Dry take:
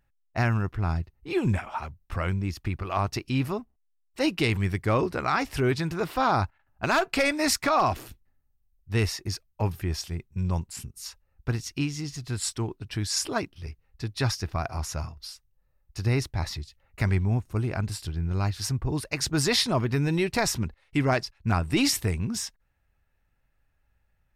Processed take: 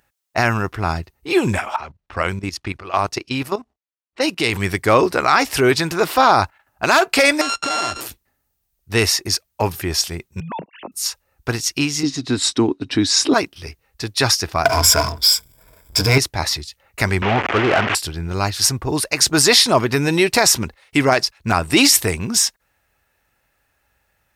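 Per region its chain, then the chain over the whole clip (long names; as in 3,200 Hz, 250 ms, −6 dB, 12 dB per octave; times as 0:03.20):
0:01.76–0:04.53: low-pass that shuts in the quiet parts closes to 2,300 Hz, open at −22.5 dBFS + output level in coarse steps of 14 dB
0:07.41–0:08.01: samples sorted by size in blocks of 32 samples + low-pass filter 7,400 Hz 24 dB per octave + downward compressor 10 to 1, threshold −30 dBFS
0:10.40–0:10.92: three sine waves on the formant tracks + downward compressor 4 to 1, threshold −35 dBFS
0:12.03–0:13.34: high-pass filter 52 Hz + high-frequency loss of the air 88 metres + hollow resonant body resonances 270/3,800 Hz, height 16 dB
0:14.65–0:16.18: EQ curve with evenly spaced ripples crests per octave 1.7, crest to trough 17 dB + power curve on the samples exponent 0.7
0:17.22–0:17.95: linear delta modulator 16 kbit/s, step −33.5 dBFS + high-pass filter 43 Hz 24 dB per octave + mid-hump overdrive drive 23 dB, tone 1,900 Hz, clips at −16.5 dBFS
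whole clip: high-pass filter 45 Hz; bass and treble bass −11 dB, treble +5 dB; boost into a limiter +13.5 dB; level −1 dB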